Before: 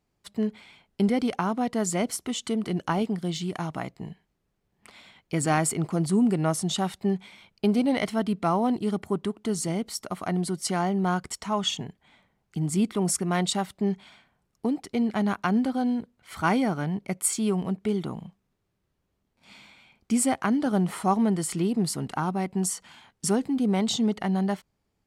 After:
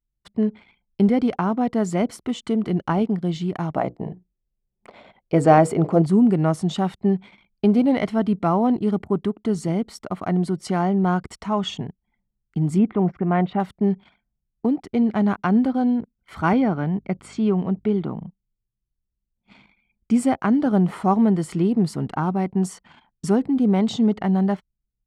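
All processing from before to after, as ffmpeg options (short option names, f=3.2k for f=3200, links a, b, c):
-filter_complex "[0:a]asettb=1/sr,asplit=3[a][b][c];[a]atrim=end=3.734[d];[b]atrim=start=3.73:end=6.02,asetpts=PTS-STARTPTS,afade=t=in:d=0.004:c=qsin,afade=t=out:st=2.286:d=0.004:c=qsin,equalizer=f=560:t=o:w=1.3:g=11,bandreject=f=60:t=h:w=6,bandreject=f=120:t=h:w=6,bandreject=f=180:t=h:w=6,bandreject=f=240:t=h:w=6,bandreject=f=300:t=h:w=6,bandreject=f=360:t=h:w=6,bandreject=f=420:t=h:w=6,bandreject=f=480:t=h:w=6[e];[c]atrim=start=6.016[f];[d][e]acrossfade=d=0.004:c1=hsin:c2=qsin[g];[g][f]acrossfade=d=0.004:c1=qsin:c2=hsin,asettb=1/sr,asplit=3[h][i][j];[h]atrim=end=12.784[k];[i]atrim=start=12.78:end=13.6,asetpts=PTS-STARTPTS,afade=t=in:d=0.004:c=qsin,afade=t=out:st=0.816:d=0.004:c=qsin,lowpass=f=2.6k:w=0.5412,lowpass=f=2.6k:w=1.3066,equalizer=f=750:w=6:g=4.5[l];[j]atrim=start=13.596[m];[k][l]acrossfade=d=0.004:c1=hsin:c2=qsin[n];[n][m]acrossfade=d=0.004:c1=qsin:c2=hsin,asettb=1/sr,asplit=3[o][p][q];[o]atrim=end=16.534[r];[p]atrim=start=16.53:end=18.21,asetpts=PTS-STARTPTS,afade=t=in:d=0.004:c=qsin,afade=t=out:st=1.676:d=0.004:c=qsin,aeval=exprs='val(0)+0.00282*(sin(2*PI*50*n/s)+sin(2*PI*2*50*n/s)/2+sin(2*PI*3*50*n/s)/3+sin(2*PI*4*50*n/s)/4+sin(2*PI*5*50*n/s)/5)':c=same,highpass=110,lowpass=4.5k[s];[q]atrim=start=18.206[t];[r][s]acrossfade=d=0.004:c1=hsin:c2=qsin[u];[u][t]acrossfade=d=0.004:c1=qsin:c2=hsin,anlmdn=0.00631,lowpass=f=1.8k:p=1,lowshelf=f=470:g=3,volume=3.5dB"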